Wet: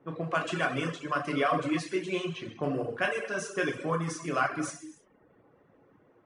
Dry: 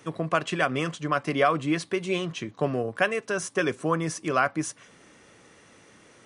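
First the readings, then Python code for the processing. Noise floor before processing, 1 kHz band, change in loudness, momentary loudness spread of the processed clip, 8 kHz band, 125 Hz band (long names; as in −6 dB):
−55 dBFS, −4.0 dB, −4.0 dB, 7 LU, −5.5 dB, −4.0 dB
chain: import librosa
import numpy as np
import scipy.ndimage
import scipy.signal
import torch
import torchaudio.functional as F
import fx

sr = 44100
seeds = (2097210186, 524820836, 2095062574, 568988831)

y = fx.env_lowpass(x, sr, base_hz=850.0, full_db=-23.0)
y = fx.peak_eq(y, sr, hz=66.0, db=-5.0, octaves=1.1)
y = fx.rev_gated(y, sr, seeds[0], gate_ms=360, shape='falling', drr_db=-1.5)
y = fx.dereverb_blind(y, sr, rt60_s=0.65)
y = y * 10.0 ** (-6.5 / 20.0)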